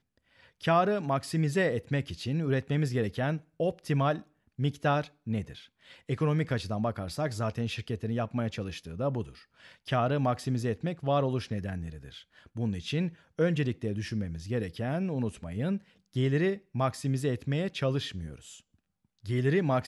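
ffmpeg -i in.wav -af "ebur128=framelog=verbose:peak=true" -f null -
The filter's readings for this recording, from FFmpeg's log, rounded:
Integrated loudness:
  I:         -30.9 LUFS
  Threshold: -41.4 LUFS
Loudness range:
  LRA:         3.1 LU
  Threshold: -51.6 LUFS
  LRA low:   -32.9 LUFS
  LRA high:  -29.8 LUFS
True peak:
  Peak:      -14.5 dBFS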